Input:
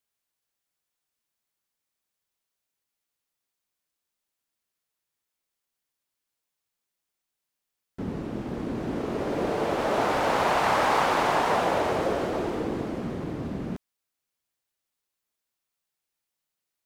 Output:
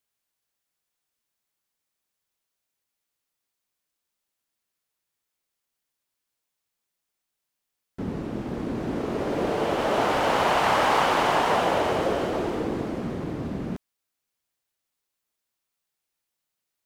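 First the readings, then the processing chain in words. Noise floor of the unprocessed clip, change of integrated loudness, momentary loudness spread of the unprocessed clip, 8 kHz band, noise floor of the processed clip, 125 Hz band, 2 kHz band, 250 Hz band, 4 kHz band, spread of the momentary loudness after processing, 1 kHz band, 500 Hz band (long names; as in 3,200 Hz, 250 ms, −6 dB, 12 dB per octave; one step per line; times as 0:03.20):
−85 dBFS, +1.5 dB, 11 LU, +1.5 dB, −83 dBFS, +1.5 dB, +1.5 dB, +1.5 dB, +4.0 dB, 11 LU, +1.5 dB, +1.5 dB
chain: dynamic equaliser 3,000 Hz, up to +5 dB, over −52 dBFS, Q 6.5
level +1.5 dB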